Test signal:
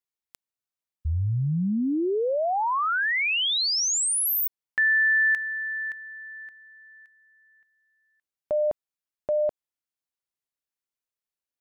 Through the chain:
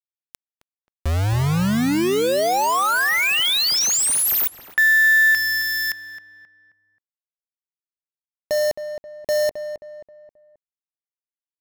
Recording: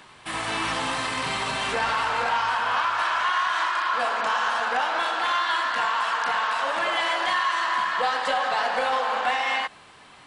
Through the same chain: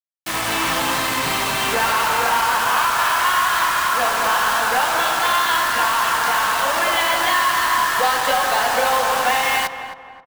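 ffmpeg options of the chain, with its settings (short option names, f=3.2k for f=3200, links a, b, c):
-filter_complex "[0:a]acrusher=bits=4:mix=0:aa=0.000001,asplit=2[a][b];[b]adelay=266,lowpass=f=1.9k:p=1,volume=-9.5dB,asplit=2[c][d];[d]adelay=266,lowpass=f=1.9k:p=1,volume=0.41,asplit=2[e][f];[f]adelay=266,lowpass=f=1.9k:p=1,volume=0.41,asplit=2[g][h];[h]adelay=266,lowpass=f=1.9k:p=1,volume=0.41[i];[a][c][e][g][i]amix=inputs=5:normalize=0,volume=5.5dB"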